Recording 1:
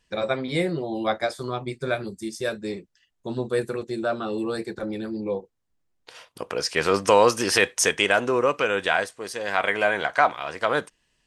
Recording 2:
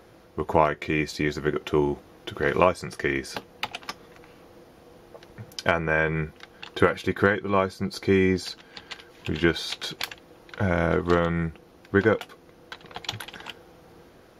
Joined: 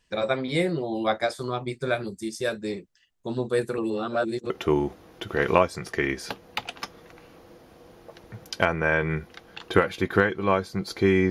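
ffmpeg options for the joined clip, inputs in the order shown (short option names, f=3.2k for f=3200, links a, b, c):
-filter_complex "[0:a]apad=whole_dur=11.3,atrim=end=11.3,asplit=2[a][b];[a]atrim=end=3.782[c];[b]atrim=start=3.778:end=4.502,asetpts=PTS-STARTPTS,areverse[d];[1:a]atrim=start=1.558:end=8.36[e];[c][d]acrossfade=d=0.004:c1=hsin:c2=hsin[f];[f][e]acrossfade=d=0.004:c1=hsin:c2=hsin"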